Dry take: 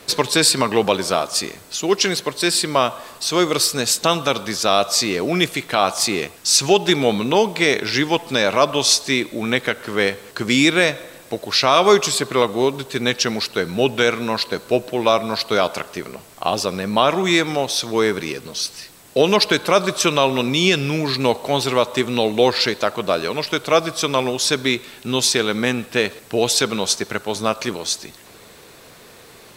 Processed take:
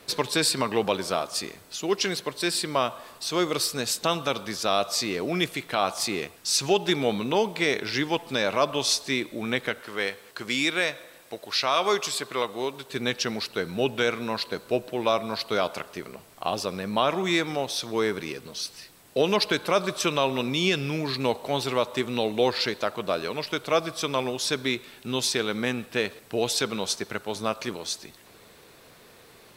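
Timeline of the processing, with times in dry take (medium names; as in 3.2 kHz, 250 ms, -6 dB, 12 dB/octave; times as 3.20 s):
9.80–12.90 s: bass shelf 400 Hz -9.5 dB
whole clip: peaking EQ 7.1 kHz -3 dB 0.77 oct; trim -7.5 dB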